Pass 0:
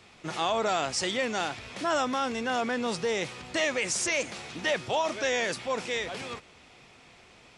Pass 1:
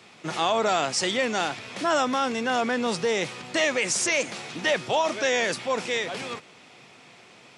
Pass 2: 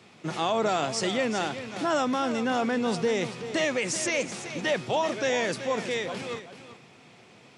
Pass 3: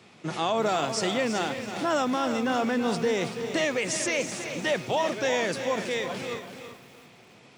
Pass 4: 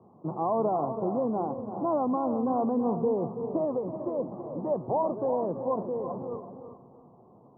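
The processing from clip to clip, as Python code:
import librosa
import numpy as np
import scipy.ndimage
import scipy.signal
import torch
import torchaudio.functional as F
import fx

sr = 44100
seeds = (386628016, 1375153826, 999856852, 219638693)

y1 = scipy.signal.sosfilt(scipy.signal.butter(4, 120.0, 'highpass', fs=sr, output='sos'), x)
y1 = F.gain(torch.from_numpy(y1), 4.0).numpy()
y2 = fx.low_shelf(y1, sr, hz=460.0, db=8.0)
y2 = y2 + 10.0 ** (-11.5 / 20.0) * np.pad(y2, (int(381 * sr / 1000.0), 0))[:len(y2)]
y2 = F.gain(torch.from_numpy(y2), -5.0).numpy()
y3 = fx.echo_crushed(y2, sr, ms=329, feedback_pct=35, bits=8, wet_db=-10.0)
y4 = scipy.signal.sosfilt(scipy.signal.cheby1(6, 1.0, 1100.0, 'lowpass', fs=sr, output='sos'), y3)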